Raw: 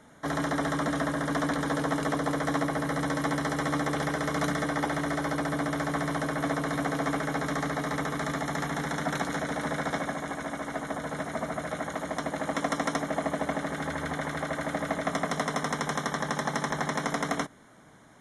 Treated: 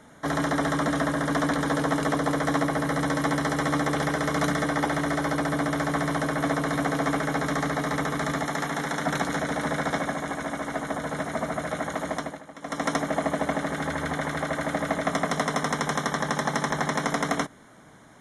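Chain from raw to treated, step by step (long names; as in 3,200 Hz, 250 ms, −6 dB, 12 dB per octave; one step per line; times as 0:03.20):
0:08.44–0:09.04: low-shelf EQ 140 Hz −9.5 dB
0:12.12–0:12.90: duck −17 dB, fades 0.30 s
level +3.5 dB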